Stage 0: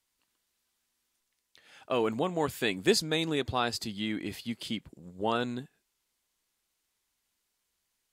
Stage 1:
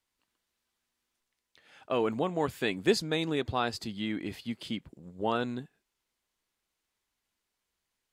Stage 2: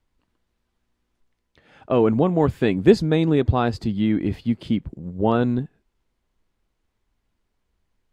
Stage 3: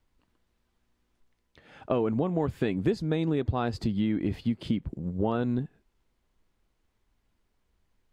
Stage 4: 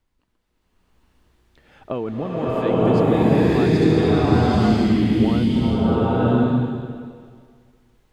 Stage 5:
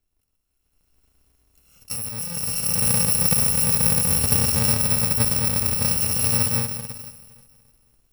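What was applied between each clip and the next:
treble shelf 4.4 kHz -8 dB
tilt EQ -3.5 dB/octave; trim +6.5 dB
compression 5:1, threshold -24 dBFS, peak gain reduction 15 dB
swelling reverb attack 980 ms, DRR -11.5 dB
bit-reversed sample order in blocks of 128 samples; trim -3.5 dB

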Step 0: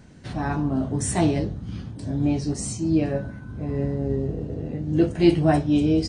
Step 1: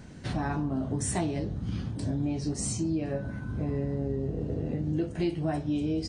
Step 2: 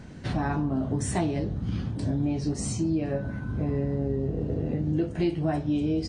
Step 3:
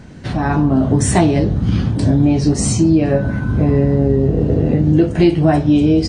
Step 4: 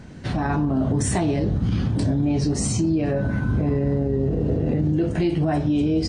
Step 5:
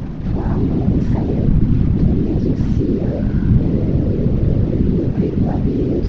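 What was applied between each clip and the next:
compression 6:1, threshold -29 dBFS, peak gain reduction 17 dB; trim +2 dB
treble shelf 6.8 kHz -9 dB; trim +3 dB
level rider gain up to 8 dB; trim +6 dB
peak limiter -10.5 dBFS, peak gain reduction 8.5 dB; trim -3.5 dB
one-bit delta coder 32 kbps, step -25 dBFS; tilt EQ -4.5 dB/octave; whisper effect; trim -6 dB

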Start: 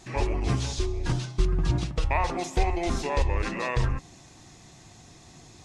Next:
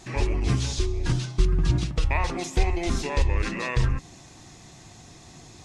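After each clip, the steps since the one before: dynamic bell 730 Hz, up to -7 dB, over -43 dBFS, Q 0.91; trim +3 dB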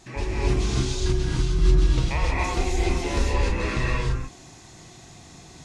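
gated-style reverb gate 310 ms rising, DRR -4.5 dB; trim -4 dB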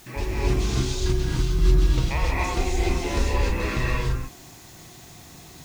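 added noise white -52 dBFS

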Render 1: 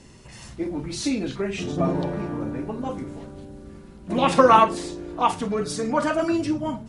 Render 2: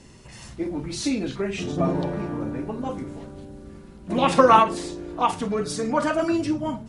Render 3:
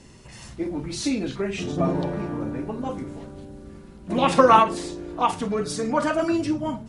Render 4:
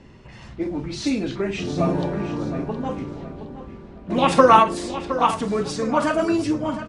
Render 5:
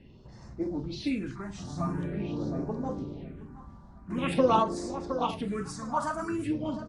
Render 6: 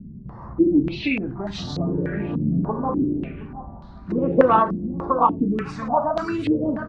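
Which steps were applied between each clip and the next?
endings held to a fixed fall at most 250 dB/s
no audible change
feedback delay 716 ms, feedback 35%, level -12 dB; level-controlled noise filter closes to 2.7 kHz, open at -18 dBFS; trim +2 dB
phase shifter stages 4, 0.46 Hz, lowest notch 400–3000 Hz; trim -6.5 dB
in parallel at +1 dB: compression, threshold -36 dBFS, peak gain reduction 17 dB; on the sum: step-sequenced low-pass 3.4 Hz 200–4000 Hz; trim +2.5 dB

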